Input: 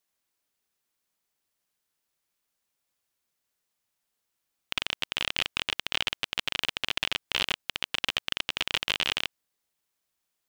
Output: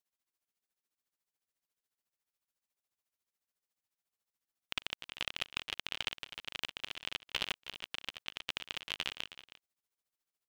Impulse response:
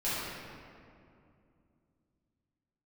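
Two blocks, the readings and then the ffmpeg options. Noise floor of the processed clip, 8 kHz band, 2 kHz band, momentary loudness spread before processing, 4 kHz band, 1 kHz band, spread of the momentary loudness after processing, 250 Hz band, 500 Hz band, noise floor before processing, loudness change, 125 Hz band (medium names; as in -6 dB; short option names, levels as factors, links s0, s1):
under -85 dBFS, -10.0 dB, -10.5 dB, 4 LU, -10.5 dB, -10.0 dB, 6 LU, -10.5 dB, -10.0 dB, -82 dBFS, -10.5 dB, -10.0 dB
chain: -filter_complex "[0:a]tremolo=f=14:d=0.91,asplit=2[s0][s1];[s1]aecho=0:1:317:0.188[s2];[s0][s2]amix=inputs=2:normalize=0,volume=0.501"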